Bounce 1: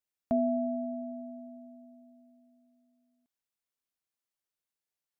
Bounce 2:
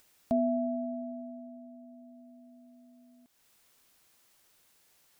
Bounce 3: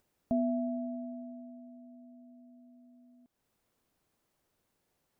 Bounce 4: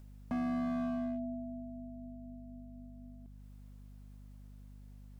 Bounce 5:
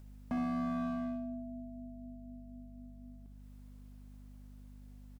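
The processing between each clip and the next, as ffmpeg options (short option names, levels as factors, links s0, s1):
-af "acompressor=mode=upward:threshold=0.00562:ratio=2.5"
-af "tiltshelf=f=1100:g=8,volume=0.398"
-filter_complex "[0:a]acrossover=split=280[s0][s1];[s1]alimiter=level_in=3.76:limit=0.0631:level=0:latency=1,volume=0.266[s2];[s0][s2]amix=inputs=2:normalize=0,asoftclip=type=hard:threshold=0.0133,aeval=exprs='val(0)+0.00158*(sin(2*PI*50*n/s)+sin(2*PI*2*50*n/s)/2+sin(2*PI*3*50*n/s)/3+sin(2*PI*4*50*n/s)/4+sin(2*PI*5*50*n/s)/5)':c=same,volume=1.78"
-af "aecho=1:1:64|128|192|256|320|384:0.398|0.191|0.0917|0.044|0.0211|0.0101"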